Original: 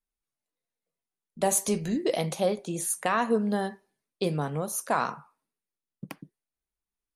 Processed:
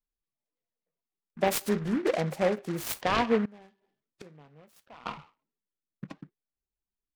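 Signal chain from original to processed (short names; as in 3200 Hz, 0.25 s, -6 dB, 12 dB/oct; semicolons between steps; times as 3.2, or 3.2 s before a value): loudest bins only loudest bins 32; 3.45–5.06 flipped gate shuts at -31 dBFS, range -24 dB; noise-modulated delay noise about 1300 Hz, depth 0.082 ms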